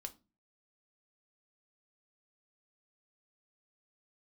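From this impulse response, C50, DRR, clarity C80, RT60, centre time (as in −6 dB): 19.0 dB, 7.0 dB, 26.0 dB, 0.30 s, 5 ms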